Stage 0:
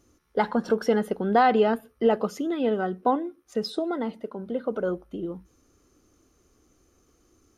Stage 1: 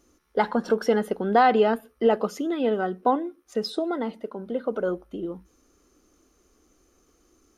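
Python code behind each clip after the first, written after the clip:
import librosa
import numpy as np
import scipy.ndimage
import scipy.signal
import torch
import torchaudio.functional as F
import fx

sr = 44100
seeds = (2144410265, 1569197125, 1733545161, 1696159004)

y = fx.peak_eq(x, sr, hz=110.0, db=-12.0, octaves=0.87)
y = y * 10.0 ** (1.5 / 20.0)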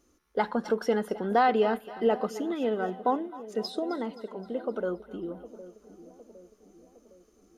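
y = fx.echo_split(x, sr, split_hz=740.0, low_ms=760, high_ms=262, feedback_pct=52, wet_db=-15.0)
y = y * 10.0 ** (-4.5 / 20.0)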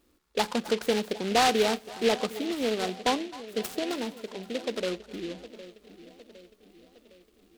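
y = fx.noise_mod_delay(x, sr, seeds[0], noise_hz=2800.0, depth_ms=0.11)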